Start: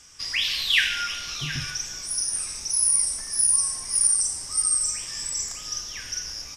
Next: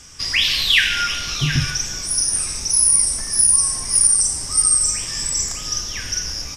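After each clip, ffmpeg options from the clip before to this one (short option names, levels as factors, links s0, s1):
-filter_complex "[0:a]lowshelf=f=410:g=7.5,asplit=2[s0][s1];[s1]alimiter=limit=0.224:level=0:latency=1:release=219,volume=1.06[s2];[s0][s2]amix=inputs=2:normalize=0,volume=1.12"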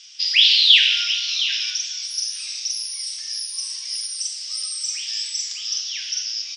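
-filter_complex "[0:a]asplit=2[s0][s1];[s1]aeval=exprs='0.891*sin(PI/2*2*val(0)/0.891)':c=same,volume=0.668[s2];[s0][s2]amix=inputs=2:normalize=0,asuperpass=centerf=3700:order=4:qfactor=1.7,volume=0.668"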